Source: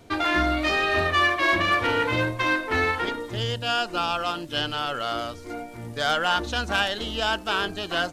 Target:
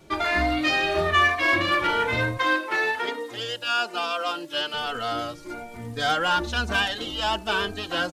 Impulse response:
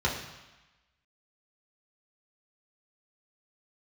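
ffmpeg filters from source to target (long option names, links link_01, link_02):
-filter_complex "[0:a]asettb=1/sr,asplit=3[link_01][link_02][link_03];[link_01]atrim=end=2.374[link_04];[link_02]atrim=start=2.37:end=4.74,asetpts=PTS-STARTPTS,afade=type=in:duration=0.004:curve=qsin,afade=type=out:start_time=2.366:duration=0.004:curve=qsin,highpass=340[link_05];[link_03]atrim=start=4.736[link_06];[link_04][link_05]acrossfade=duration=0.004:curve1=hsin:curve2=qsin[link_07];[link_07][link_06]acrossfade=duration=0.004:curve1=qsin:curve2=hsin,asplit=2[link_08][link_09];[link_09]adelay=3.1,afreqshift=1.1[link_10];[link_08][link_10]amix=inputs=2:normalize=1,volume=3dB"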